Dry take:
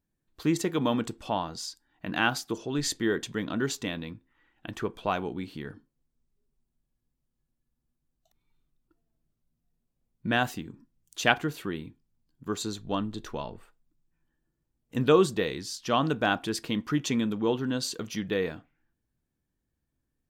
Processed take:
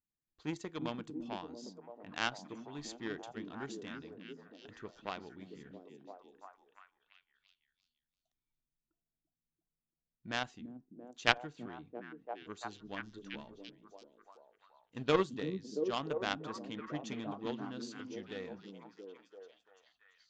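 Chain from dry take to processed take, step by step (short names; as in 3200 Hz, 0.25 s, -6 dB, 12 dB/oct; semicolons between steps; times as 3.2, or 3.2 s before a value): added harmonics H 2 -12 dB, 3 -22 dB, 7 -22 dB, 8 -36 dB, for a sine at -4 dBFS; elliptic low-pass 7000 Hz, stop band 50 dB; delay with a stepping band-pass 0.339 s, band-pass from 220 Hz, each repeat 0.7 oct, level -1 dB; gain -3.5 dB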